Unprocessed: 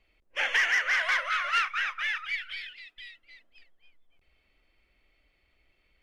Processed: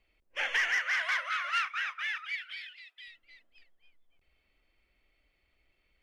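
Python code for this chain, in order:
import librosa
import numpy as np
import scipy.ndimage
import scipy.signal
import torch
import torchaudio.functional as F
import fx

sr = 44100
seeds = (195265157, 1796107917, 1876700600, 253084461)

y = fx.highpass(x, sr, hz=650.0, slope=12, at=(0.79, 3.08))
y = y * librosa.db_to_amplitude(-4.0)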